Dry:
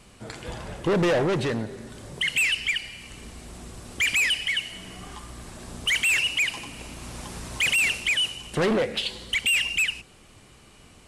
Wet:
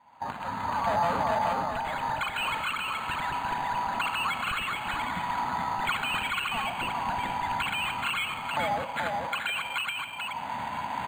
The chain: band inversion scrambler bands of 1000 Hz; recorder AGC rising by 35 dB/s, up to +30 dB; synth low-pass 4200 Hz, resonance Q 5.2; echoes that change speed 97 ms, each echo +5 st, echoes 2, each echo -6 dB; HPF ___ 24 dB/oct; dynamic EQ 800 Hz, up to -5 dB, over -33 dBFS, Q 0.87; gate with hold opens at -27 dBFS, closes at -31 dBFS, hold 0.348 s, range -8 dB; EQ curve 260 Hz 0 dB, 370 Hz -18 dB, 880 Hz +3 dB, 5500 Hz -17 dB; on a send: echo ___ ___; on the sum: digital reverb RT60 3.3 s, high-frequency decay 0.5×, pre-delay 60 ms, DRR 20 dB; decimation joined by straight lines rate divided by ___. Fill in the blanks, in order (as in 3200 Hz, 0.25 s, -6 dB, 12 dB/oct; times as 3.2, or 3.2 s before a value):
69 Hz, 0.426 s, -3 dB, 8×